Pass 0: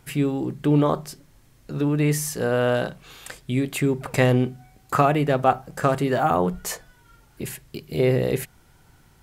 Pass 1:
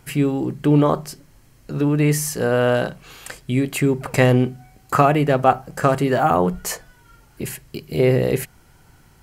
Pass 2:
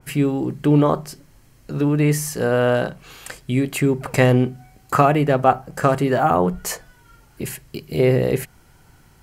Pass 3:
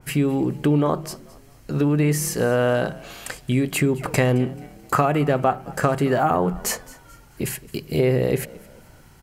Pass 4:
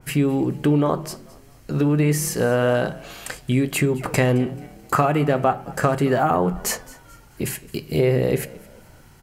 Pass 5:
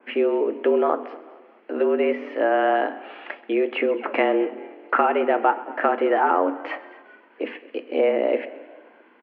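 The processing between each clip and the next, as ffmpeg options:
-af "bandreject=f=3.6k:w=11,volume=3.5dB"
-af "adynamicequalizer=threshold=0.0224:dfrequency=2200:dqfactor=0.7:tfrequency=2200:tqfactor=0.7:attack=5:release=100:ratio=0.375:range=2:mode=cutabove:tftype=highshelf"
-filter_complex "[0:a]acompressor=threshold=-19dB:ratio=3,asplit=4[a][b][c][d];[b]adelay=217,afreqshift=40,volume=-21dB[e];[c]adelay=434,afreqshift=80,volume=-29.6dB[f];[d]adelay=651,afreqshift=120,volume=-38.3dB[g];[a][e][f][g]amix=inputs=4:normalize=0,volume=2dB"
-af "flanger=delay=6.1:depth=7.6:regen=-82:speed=0.31:shape=triangular,volume=5dB"
-af "aecho=1:1:131|262|393|524|655:0.1|0.058|0.0336|0.0195|0.0113,highpass=f=190:t=q:w=0.5412,highpass=f=190:t=q:w=1.307,lowpass=f=2.7k:t=q:w=0.5176,lowpass=f=2.7k:t=q:w=0.7071,lowpass=f=2.7k:t=q:w=1.932,afreqshift=99"

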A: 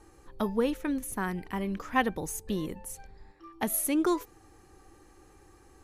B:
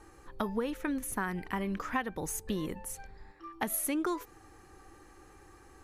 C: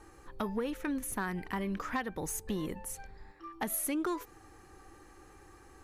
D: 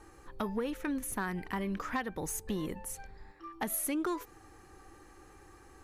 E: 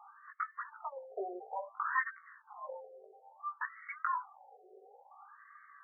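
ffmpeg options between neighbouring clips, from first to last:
-af "equalizer=f=1.5k:t=o:w=1.5:g=5,acompressor=threshold=-29dB:ratio=6"
-af "asoftclip=type=tanh:threshold=-24.5dB"
-af anull
-af "flanger=delay=16.5:depth=2.5:speed=1.4,afftfilt=real='re*between(b*sr/1024,520*pow(1600/520,0.5+0.5*sin(2*PI*0.58*pts/sr))/1.41,520*pow(1600/520,0.5+0.5*sin(2*PI*0.58*pts/sr))*1.41)':imag='im*between(b*sr/1024,520*pow(1600/520,0.5+0.5*sin(2*PI*0.58*pts/sr))/1.41,520*pow(1600/520,0.5+0.5*sin(2*PI*0.58*pts/sr))*1.41)':win_size=1024:overlap=0.75,volume=9dB"

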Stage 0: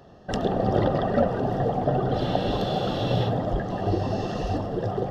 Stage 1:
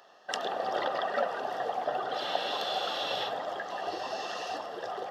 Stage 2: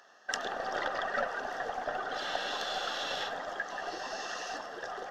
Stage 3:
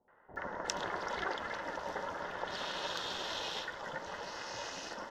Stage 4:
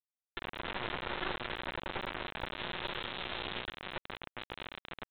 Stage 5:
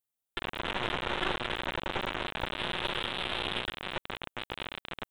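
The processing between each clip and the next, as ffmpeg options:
-af "highpass=970,volume=2dB"
-af "aeval=exprs='0.188*(cos(1*acos(clip(val(0)/0.188,-1,1)))-cos(1*PI/2))+0.00668*(cos(6*acos(clip(val(0)/0.188,-1,1)))-cos(6*PI/2))':c=same,equalizer=f=250:t=o:w=0.67:g=4,equalizer=f=1.6k:t=o:w=0.67:g=10,equalizer=f=6.3k:t=o:w=0.67:g=10,volume=-5.5dB"
-filter_complex "[0:a]acrossover=split=520|1800[a][b][c];[b]adelay=80[d];[c]adelay=360[e];[a][d][e]amix=inputs=3:normalize=0,aeval=exprs='val(0)*sin(2*PI*180*n/s)':c=same,volume=1dB"
-af "aeval=exprs='val(0)+0.00251*(sin(2*PI*60*n/s)+sin(2*PI*2*60*n/s)/2+sin(2*PI*3*60*n/s)/3+sin(2*PI*4*60*n/s)/4+sin(2*PI*5*60*n/s)/5)':c=same,aresample=8000,acrusher=bits=3:dc=4:mix=0:aa=0.000001,aresample=44100,volume=2.5dB"
-filter_complex "[0:a]aexciter=amount=1.8:drive=3.7:freq=2.8k,asplit=2[a][b];[b]adynamicsmooth=sensitivity=4.5:basefreq=1.9k,volume=-1dB[c];[a][c]amix=inputs=2:normalize=0"

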